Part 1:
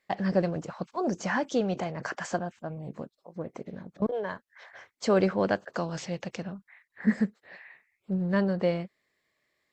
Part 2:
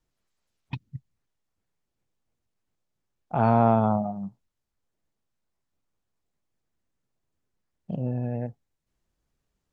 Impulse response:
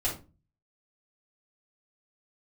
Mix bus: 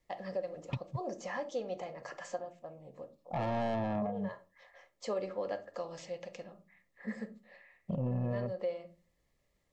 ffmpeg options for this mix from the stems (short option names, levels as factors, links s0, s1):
-filter_complex "[0:a]lowshelf=f=280:g=-10,volume=0.251,asplit=2[s0][s1];[s1]volume=0.266[s2];[1:a]asoftclip=type=tanh:threshold=0.0562,volume=1.06[s3];[2:a]atrim=start_sample=2205[s4];[s2][s4]afir=irnorm=-1:irlink=0[s5];[s0][s3][s5]amix=inputs=3:normalize=0,asuperstop=centerf=1500:order=12:qfactor=7.6,equalizer=f=550:t=o:w=0.32:g=9,alimiter=level_in=1.26:limit=0.0631:level=0:latency=1:release=328,volume=0.794"